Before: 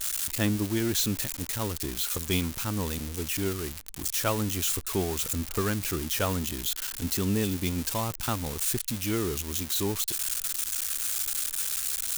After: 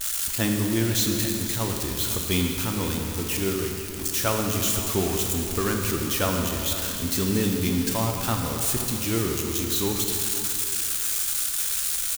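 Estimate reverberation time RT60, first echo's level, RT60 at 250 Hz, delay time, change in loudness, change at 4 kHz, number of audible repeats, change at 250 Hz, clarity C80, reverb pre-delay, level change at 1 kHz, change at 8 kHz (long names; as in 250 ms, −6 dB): 2.7 s, −14.0 dB, 2.6 s, 506 ms, +4.0 dB, +4.5 dB, 1, +4.5 dB, 3.5 dB, 5 ms, +4.5 dB, +4.0 dB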